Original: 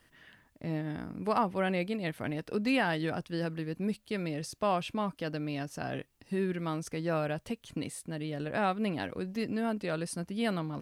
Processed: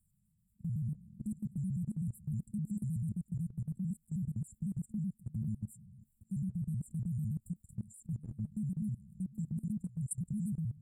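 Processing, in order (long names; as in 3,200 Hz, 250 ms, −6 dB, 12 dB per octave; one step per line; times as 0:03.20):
pitch shifter gated in a rhythm −5 semitones, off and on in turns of 63 ms
brick-wall band-stop 220–7,100 Hz
output level in coarse steps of 20 dB
level +5 dB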